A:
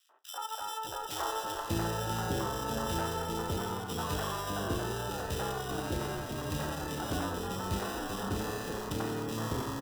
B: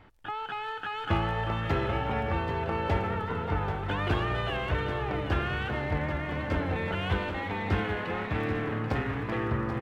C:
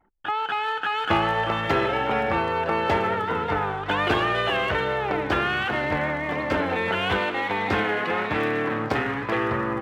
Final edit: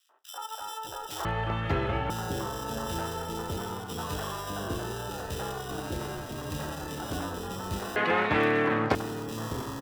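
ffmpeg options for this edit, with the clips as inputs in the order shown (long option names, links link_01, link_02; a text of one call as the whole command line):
ffmpeg -i take0.wav -i take1.wav -i take2.wav -filter_complex "[0:a]asplit=3[link_01][link_02][link_03];[link_01]atrim=end=1.252[link_04];[1:a]atrim=start=1.248:end=2.102[link_05];[link_02]atrim=start=2.098:end=7.962[link_06];[2:a]atrim=start=7.958:end=8.952[link_07];[link_03]atrim=start=8.948[link_08];[link_04][link_05]acrossfade=duration=0.004:curve1=hsin:curve2=hsin[link_09];[link_09][link_06]acrossfade=duration=0.004:curve1=hsin:curve2=hsin[link_10];[link_10][link_07]acrossfade=duration=0.004:curve1=hsin:curve2=hsin[link_11];[link_11][link_08]acrossfade=duration=0.004:curve1=hsin:curve2=hsin" out.wav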